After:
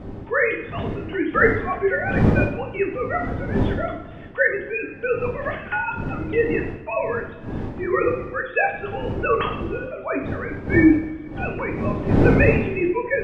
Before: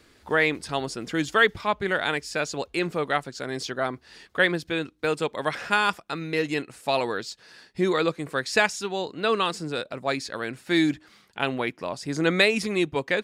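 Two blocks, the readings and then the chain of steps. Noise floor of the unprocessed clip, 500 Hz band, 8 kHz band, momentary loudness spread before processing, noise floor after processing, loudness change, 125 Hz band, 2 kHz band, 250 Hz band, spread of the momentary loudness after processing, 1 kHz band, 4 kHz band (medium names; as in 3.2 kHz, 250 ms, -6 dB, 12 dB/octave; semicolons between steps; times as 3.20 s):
-59 dBFS, +4.5 dB, under -20 dB, 11 LU, -37 dBFS, +3.5 dB, +11.5 dB, +2.0 dB, +6.5 dB, 12 LU, +1.5 dB, -14.5 dB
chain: formants replaced by sine waves; wind noise 270 Hz -29 dBFS; two-slope reverb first 0.53 s, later 2.1 s, from -18 dB, DRR -0.5 dB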